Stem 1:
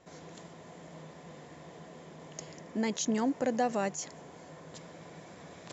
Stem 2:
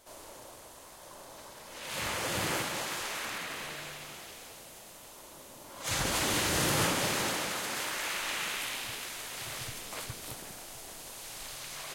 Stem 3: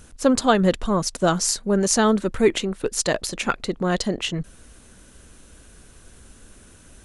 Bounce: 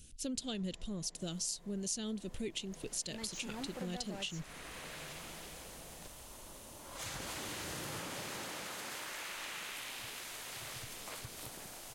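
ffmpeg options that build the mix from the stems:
-filter_complex "[0:a]asoftclip=type=tanh:threshold=0.0376,adelay=350,volume=0.422[s0];[1:a]acompressor=threshold=0.0112:ratio=2,adelay=1150,volume=0.668[s1];[2:a]firequalizer=gain_entry='entry(130,0);entry(1000,-21);entry(2800,4)':delay=0.05:min_phase=1,volume=0.335,asplit=2[s2][s3];[s3]apad=whole_len=577546[s4];[s1][s4]sidechaincompress=threshold=0.0112:ratio=8:attack=30:release=914[s5];[s0][s5][s2]amix=inputs=3:normalize=0,acompressor=threshold=0.01:ratio=2.5"

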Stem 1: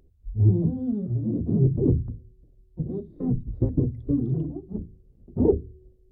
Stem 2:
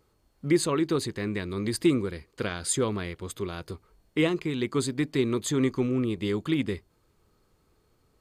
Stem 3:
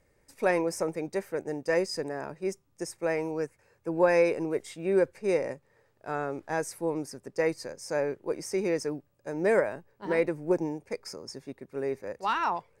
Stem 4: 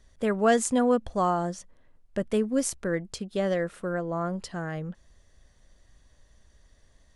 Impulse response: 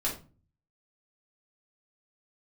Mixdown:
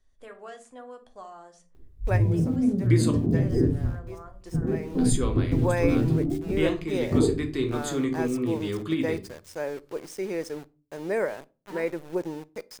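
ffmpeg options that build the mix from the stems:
-filter_complex "[0:a]acompressor=threshold=0.0631:ratio=6,adelay=1750,volume=0.891,asplit=2[s0][s1];[s1]volume=0.631[s2];[1:a]adelay=2400,volume=0.376,asplit=3[s3][s4][s5];[s3]atrim=end=3.11,asetpts=PTS-STARTPTS,afade=t=out:st=3.106:d=0.004:c=hsin[s6];[s4]atrim=start=3.11:end=4.98,asetpts=PTS-STARTPTS,volume=0[s7];[s5]atrim=start=4.98,asetpts=PTS-STARTPTS,afade=t=in:d=0.004:c=hsin[s8];[s6][s7][s8]concat=n=3:v=0:a=1,asplit=2[s9][s10];[s10]volume=0.668[s11];[2:a]equalizer=f=110:w=5.1:g=-6,aeval=exprs='val(0)*gte(abs(val(0)),0.0106)':c=same,adelay=1650,volume=0.668,asplit=2[s12][s13];[s13]volume=0.0794[s14];[3:a]acrossover=split=440|2700[s15][s16][s17];[s15]acompressor=threshold=0.00447:ratio=4[s18];[s16]acompressor=threshold=0.0398:ratio=4[s19];[s17]acompressor=threshold=0.00631:ratio=4[s20];[s18][s19][s20]amix=inputs=3:normalize=0,bandreject=f=60:t=h:w=6,bandreject=f=120:t=h:w=6,bandreject=f=180:t=h:w=6,volume=0.141,asplit=3[s21][s22][s23];[s22]volume=0.473[s24];[s23]apad=whole_len=637260[s25];[s12][s25]sidechaincompress=threshold=0.00141:ratio=8:attack=11:release=715[s26];[4:a]atrim=start_sample=2205[s27];[s2][s11][s14][s24]amix=inputs=4:normalize=0[s28];[s28][s27]afir=irnorm=-1:irlink=0[s29];[s0][s9][s26][s21][s29]amix=inputs=5:normalize=0"

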